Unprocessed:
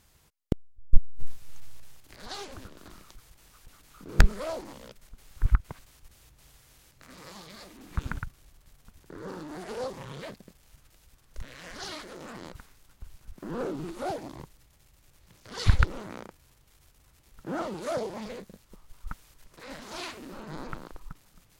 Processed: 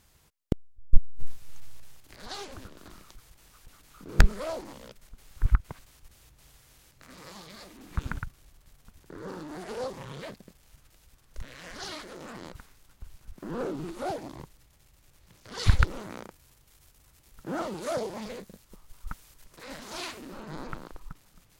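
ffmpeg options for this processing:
ffmpeg -i in.wav -filter_complex "[0:a]asettb=1/sr,asplit=3[link_01][link_02][link_03];[link_01]atrim=end=15.634[link_04];[link_02]atrim=start=15.63:end=20.21,asetpts=PTS-STARTPTS,afade=type=in:duration=0.004:curve=qsin,afade=type=out:start_time=4.576:duration=0.004:curve=qsin,highshelf=frequency=5400:gain=4.5[link_05];[link_03]atrim=start=20.206[link_06];[link_04][link_05]acrossfade=duration=0.004:curve1=hsin:curve2=qsin[link_07];[link_07][link_06]acrossfade=duration=0.004:curve1=qsin:curve2=hsin" out.wav

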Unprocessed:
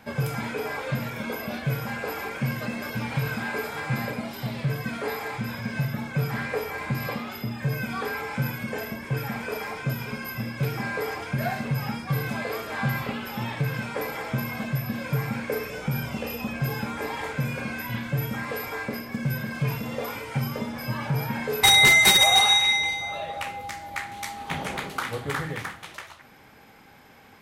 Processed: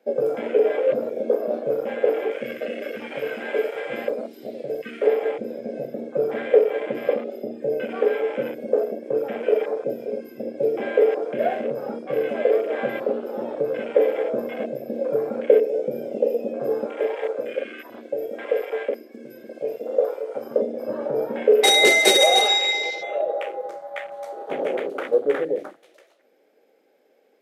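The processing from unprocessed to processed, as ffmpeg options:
ffmpeg -i in.wav -filter_complex "[0:a]asettb=1/sr,asplit=3[link_01][link_02][link_03];[link_01]atrim=end=2.314[link_04];[link_02]atrim=start=2.31:end=5.07,asetpts=PTS-STARTPTS,afade=type=in:duration=0.004:curve=qsin,afade=type=out:start_time=2.756:duration=0.004:curve=qsin,tiltshelf=frequency=1400:gain=-4.5[link_05];[link_03]atrim=start=5.066[link_06];[link_04][link_05]acrossfade=duration=0.004:curve1=hsin:curve2=qsin[link_07];[link_07][link_06]acrossfade=duration=0.004:curve1=qsin:curve2=hsin,asettb=1/sr,asplit=3[link_08][link_09][link_10];[link_08]atrim=end=16.864[link_11];[link_09]atrim=start=16.86:end=20.51,asetpts=PTS-STARTPTS,afade=type=in:duration=0.004:curve=qsin,afade=type=out:start_time=3.646:duration=0.004:curve=qsin,equalizer=frequency=160:width_type=o:width=1.5:gain=-14.5[link_12];[link_10]atrim=start=20.506[link_13];[link_11][link_12]acrossfade=duration=0.004:curve1=hsin:curve2=qsin[link_14];[link_14][link_13]acrossfade=duration=0.004:curve1=qsin:curve2=hsin,afwtdn=0.0251,highpass=frequency=330:width=0.5412,highpass=frequency=330:width=1.3066,lowshelf=frequency=730:width_type=q:width=3:gain=10" out.wav

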